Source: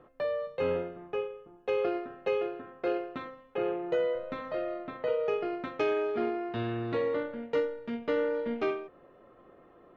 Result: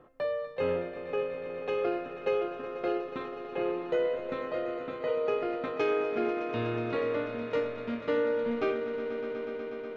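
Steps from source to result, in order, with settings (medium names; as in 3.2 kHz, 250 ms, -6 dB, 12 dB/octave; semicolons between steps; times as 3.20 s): echo with a slow build-up 122 ms, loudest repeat 5, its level -14 dB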